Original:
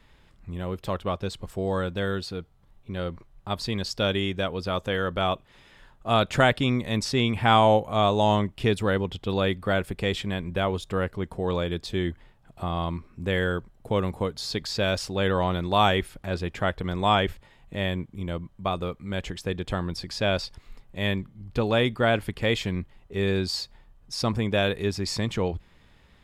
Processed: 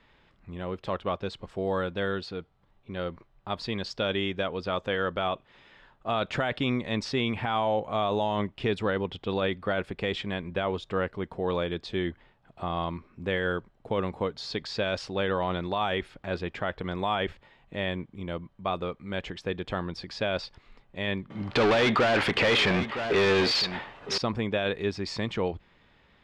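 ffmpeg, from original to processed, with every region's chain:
-filter_complex "[0:a]asettb=1/sr,asplit=3[a][b][c];[a]atrim=end=21.304[d];[b]atrim=start=21.3:end=24.18,asetpts=PTS-STARTPTS,afade=t=in:d=0.004:c=qsin,afade=t=out:st=2.876:d=0.004:c=qsin,highshelf=f=4.4k:g=-5.5,asplit=2[e][f];[f]highpass=f=720:p=1,volume=34dB,asoftclip=type=tanh:threshold=-11dB[g];[e][g]amix=inputs=2:normalize=0,lowpass=f=7.1k:p=1,volume=-6dB,aecho=1:1:962:0.2,atrim=end_sample=127008[h];[c]atrim=start=24.176[i];[d][h]acrossfade=d=0.004:c1=hsin:c2=qsin[j];[j][i]acrossfade=d=0.004:c1=qsin:c2=hsin,lowshelf=f=140:g=-10.5,alimiter=limit=-17dB:level=0:latency=1:release=22,lowpass=3.9k"

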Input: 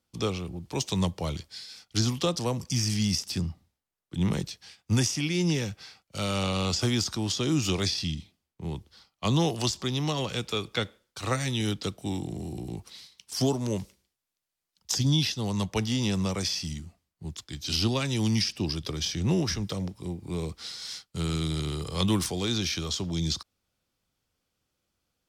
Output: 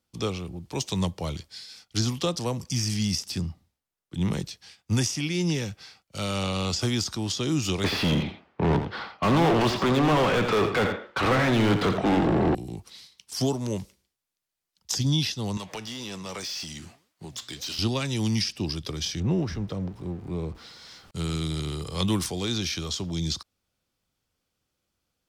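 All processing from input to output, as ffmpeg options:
-filter_complex "[0:a]asettb=1/sr,asplit=3[a][b][c];[a]atrim=end=7.844[d];[b]atrim=start=7.84:end=12.55,asetpts=PTS-STARTPTS,afade=t=in:d=0.004:c=qsin,afade=t=out:st=4.706:d=0.004:c=qsin,lowpass=2.1k,asplit=2[e][f];[f]highpass=f=720:p=1,volume=39dB,asoftclip=type=tanh:threshold=-14.5dB[g];[e][g]amix=inputs=2:normalize=0,lowpass=f=1.6k:p=1,volume=-6dB,aecho=1:1:85:0.376,atrim=end_sample=207711[h];[c]atrim=start=12.546[i];[d][h]acrossfade=d=0.004:c1=hsin:c2=qsin[j];[j][i]acrossfade=d=0.004:c1=qsin:c2=hsin,asettb=1/sr,asplit=3[k][l][m];[k]atrim=end=15.574[n];[l]atrim=start=15.57:end=17.79,asetpts=PTS-STARTPTS,afade=t=in:d=0.004:c=qsin,afade=t=out:st=2.216:d=0.004:c=qsin,flanger=delay=3:depth=5.9:regen=90:speed=1.9:shape=sinusoidal,acompressor=threshold=-41dB:ratio=20:attack=3.2:release=140:knee=1:detection=peak,asplit=2[o][p];[p]highpass=f=720:p=1,volume=24dB,asoftclip=type=tanh:threshold=-23.5dB[q];[o][q]amix=inputs=2:normalize=0,lowpass=f=7.4k:p=1,volume=-6dB[r];[m]atrim=start=17.786[s];[n][r]acrossfade=d=0.004:c1=hsin:c2=qsin[t];[t][s]acrossfade=d=0.004:c1=qsin:c2=hsin,asettb=1/sr,asplit=3[u][v][w];[u]atrim=end=19.204[x];[v]atrim=start=19.2:end=21.11,asetpts=PTS-STARTPTS,afade=t=in:d=0.004:c=qsin,afade=t=out:st=1.906:d=0.004:c=qsin,aeval=exprs='val(0)+0.5*0.00944*sgn(val(0))':c=same,lowpass=f=1.2k:p=1[y];[w]atrim=start=21.106[z];[x][y]acrossfade=d=0.004:c1=hsin:c2=qsin[aa];[aa][z]acrossfade=d=0.004:c1=qsin:c2=hsin"

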